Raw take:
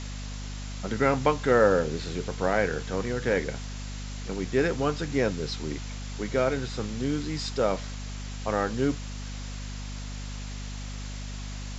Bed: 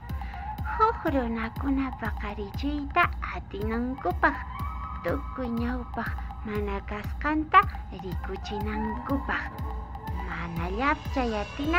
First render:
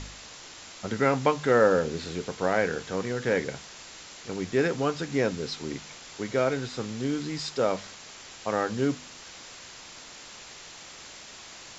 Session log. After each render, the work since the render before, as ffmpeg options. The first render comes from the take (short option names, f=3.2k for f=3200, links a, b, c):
-af "bandreject=f=50:t=h:w=4,bandreject=f=100:t=h:w=4,bandreject=f=150:t=h:w=4,bandreject=f=200:t=h:w=4,bandreject=f=250:t=h:w=4"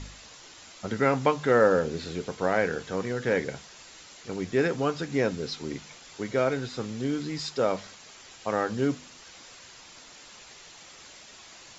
-af "afftdn=nr=6:nf=-46"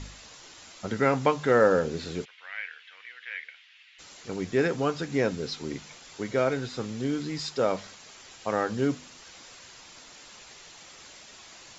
-filter_complex "[0:a]asplit=3[a][b][c];[a]afade=t=out:st=2.24:d=0.02[d];[b]asuperpass=centerf=2500:order=4:qfactor=1.7,afade=t=in:st=2.24:d=0.02,afade=t=out:st=3.98:d=0.02[e];[c]afade=t=in:st=3.98:d=0.02[f];[d][e][f]amix=inputs=3:normalize=0"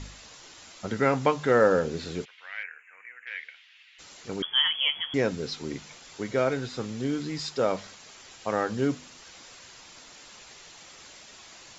-filter_complex "[0:a]asettb=1/sr,asplit=3[a][b][c];[a]atrim=end=2.634[d];[b]atrim=start=2.63:end=3.27,asetpts=PTS-STARTPTS,afade=t=in:d=0.004:c=qsin,afade=t=out:st=0.636:d=0.004:c=qsin,asuperstop=centerf=4200:order=12:qfactor=1[e];[c]atrim=start=3.266[f];[d][e]acrossfade=d=0.004:c1=hsin:c2=qsin[g];[g][f]acrossfade=d=0.004:c1=qsin:c2=hsin,asettb=1/sr,asplit=3[h][i][j];[h]atrim=end=4.424[k];[i]atrim=start=4.42:end=5.14,asetpts=PTS-STARTPTS,afade=t=in:d=0.004:c=qsin,afade=t=out:st=0.716:d=0.004:c=qsin,lowpass=f=3k:t=q:w=0.5098,lowpass=f=3k:t=q:w=0.6013,lowpass=f=3k:t=q:w=0.9,lowpass=f=3k:t=q:w=2.563,afreqshift=-3500[l];[j]atrim=start=5.136[m];[k][l]acrossfade=d=0.004:c1=hsin:c2=qsin[n];[n][m]acrossfade=d=0.004:c1=qsin:c2=hsin"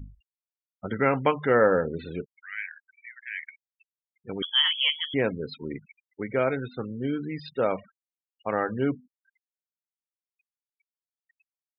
-af "highshelf=f=4.1k:t=q:w=1.5:g=-10.5,afftfilt=real='re*gte(hypot(re,im),0.0178)':imag='im*gte(hypot(re,im),0.0178)':win_size=1024:overlap=0.75"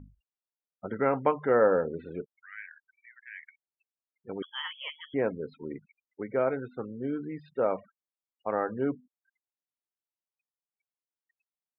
-af "lowpass=1.2k,lowshelf=f=190:g=-11.5"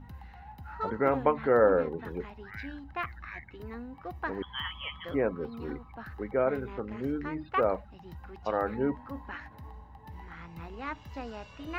-filter_complex "[1:a]volume=-12.5dB[a];[0:a][a]amix=inputs=2:normalize=0"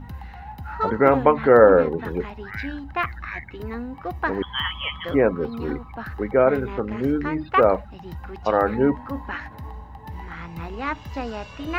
-af "volume=10dB,alimiter=limit=-2dB:level=0:latency=1"